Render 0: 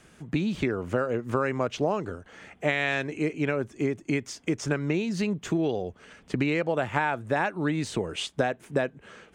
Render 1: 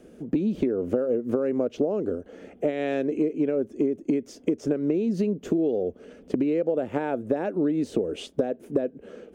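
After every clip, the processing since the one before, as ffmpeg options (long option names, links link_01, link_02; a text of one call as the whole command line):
ffmpeg -i in.wav -af "equalizer=frequency=125:width_type=o:width=1:gain=-8,equalizer=frequency=250:width_type=o:width=1:gain=9,equalizer=frequency=500:width_type=o:width=1:gain=11,equalizer=frequency=1000:width_type=o:width=1:gain=-10,equalizer=frequency=2000:width_type=o:width=1:gain=-8,equalizer=frequency=4000:width_type=o:width=1:gain=-6,equalizer=frequency=8000:width_type=o:width=1:gain=-9,acompressor=threshold=-23dB:ratio=6,volume=2dB" out.wav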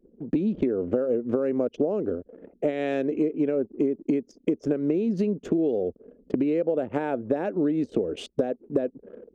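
ffmpeg -i in.wav -af "anlmdn=0.251" out.wav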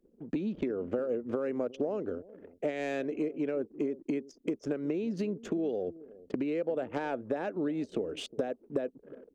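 ffmpeg -i in.wav -filter_complex "[0:a]acrossover=split=800[link_01][link_02];[link_01]aecho=1:1:361:0.133[link_03];[link_02]aeval=exprs='0.0708*sin(PI/2*1.58*val(0)/0.0708)':channel_layout=same[link_04];[link_03][link_04]amix=inputs=2:normalize=0,volume=-8.5dB" out.wav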